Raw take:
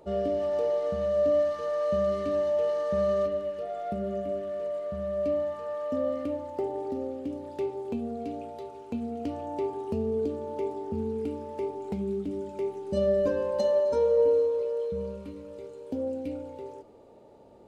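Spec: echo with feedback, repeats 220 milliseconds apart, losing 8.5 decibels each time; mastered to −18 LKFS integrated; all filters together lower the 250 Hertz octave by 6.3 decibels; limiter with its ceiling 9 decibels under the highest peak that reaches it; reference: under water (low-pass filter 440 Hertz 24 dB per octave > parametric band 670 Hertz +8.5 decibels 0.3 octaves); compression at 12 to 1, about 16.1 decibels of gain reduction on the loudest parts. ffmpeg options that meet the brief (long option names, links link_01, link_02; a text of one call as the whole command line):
ffmpeg -i in.wav -af "equalizer=frequency=250:width_type=o:gain=-8,acompressor=threshold=-38dB:ratio=12,alimiter=level_in=11.5dB:limit=-24dB:level=0:latency=1,volume=-11.5dB,lowpass=frequency=440:width=0.5412,lowpass=frequency=440:width=1.3066,equalizer=frequency=670:width_type=o:width=0.3:gain=8.5,aecho=1:1:220|440|660|880:0.376|0.143|0.0543|0.0206,volume=29dB" out.wav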